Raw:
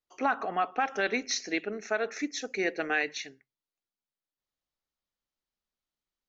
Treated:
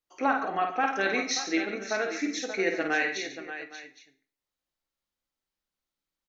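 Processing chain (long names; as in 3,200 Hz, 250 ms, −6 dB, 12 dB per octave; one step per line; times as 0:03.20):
multi-tap delay 52/141/583/813 ms −5/−12.5/−11/−18 dB
on a send at −7 dB: convolution reverb RT60 0.50 s, pre-delay 3 ms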